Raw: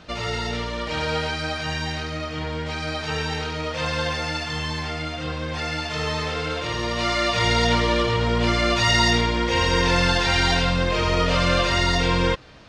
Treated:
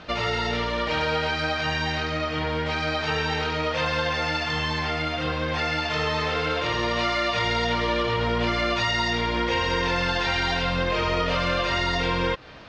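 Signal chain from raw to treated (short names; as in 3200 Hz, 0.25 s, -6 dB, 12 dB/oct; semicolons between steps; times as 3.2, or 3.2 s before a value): low shelf 320 Hz -6.5 dB; compressor, threshold -26 dBFS, peak gain reduction 10 dB; air absorption 130 m; gain +6 dB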